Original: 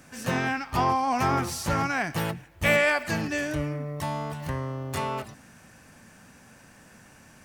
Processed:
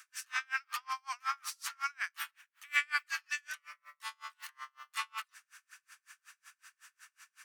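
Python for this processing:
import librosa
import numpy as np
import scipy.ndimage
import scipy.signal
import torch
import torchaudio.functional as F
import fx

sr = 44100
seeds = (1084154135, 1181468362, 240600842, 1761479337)

y = scipy.signal.sosfilt(scipy.signal.ellip(4, 1.0, 80, 1200.0, 'highpass', fs=sr, output='sos'), x)
y = fx.rider(y, sr, range_db=4, speed_s=2.0)
y = y * 10.0 ** (-37 * (0.5 - 0.5 * np.cos(2.0 * np.pi * 5.4 * np.arange(len(y)) / sr)) / 20.0)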